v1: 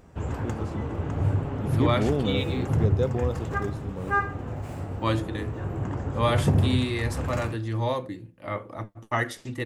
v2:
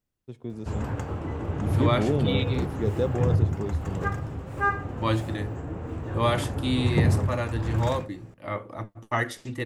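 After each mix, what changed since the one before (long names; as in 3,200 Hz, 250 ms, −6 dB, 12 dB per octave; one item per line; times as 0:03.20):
background: entry +0.50 s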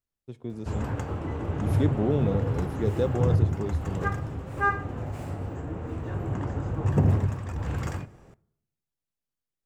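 second voice: muted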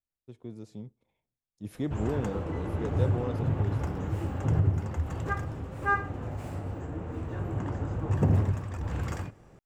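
speech −4.5 dB
background: entry +1.25 s
reverb: off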